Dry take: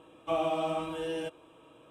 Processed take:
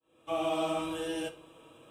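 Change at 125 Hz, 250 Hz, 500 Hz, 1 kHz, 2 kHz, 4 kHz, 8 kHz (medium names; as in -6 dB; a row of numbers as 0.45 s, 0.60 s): -3.0 dB, +2.0 dB, -1.5 dB, -2.0 dB, +1.0 dB, +2.5 dB, +6.5 dB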